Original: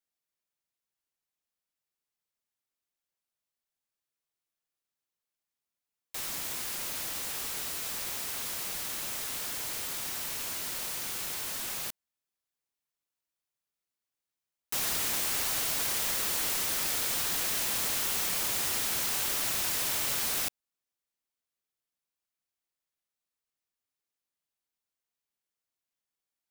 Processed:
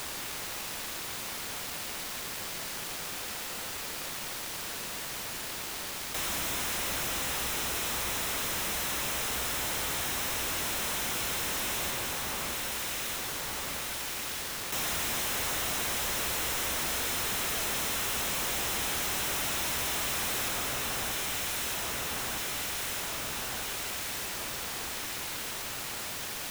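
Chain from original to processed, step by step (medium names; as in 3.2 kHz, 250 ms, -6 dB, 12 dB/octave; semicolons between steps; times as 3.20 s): peaking EQ 61 Hz +8.5 dB 0.4 oct; band-stop 4.6 kHz, Q 7.2; echo whose repeats swap between lows and highs 629 ms, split 1.6 kHz, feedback 76%, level -7.5 dB; added noise white -50 dBFS; treble shelf 5.8 kHz -8 dB; on a send at -7.5 dB: reverberation RT60 1.2 s, pre-delay 113 ms; on the sum: waveshaping leveller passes 5; level flattener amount 50%; trim -7.5 dB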